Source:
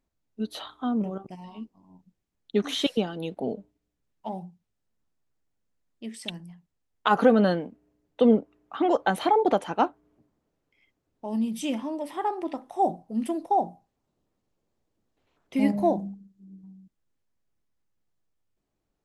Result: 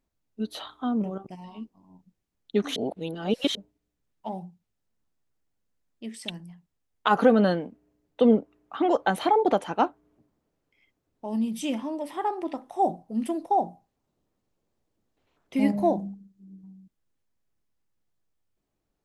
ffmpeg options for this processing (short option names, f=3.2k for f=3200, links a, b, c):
-filter_complex "[0:a]asplit=3[a][b][c];[a]atrim=end=2.762[d];[b]atrim=start=2.758:end=3.552,asetpts=PTS-STARTPTS,areverse[e];[c]atrim=start=3.548[f];[d][e]acrossfade=d=0.004:c1=hsin:c2=hsin[g];[g][f]acrossfade=d=0.004:c1=hsin:c2=hsin"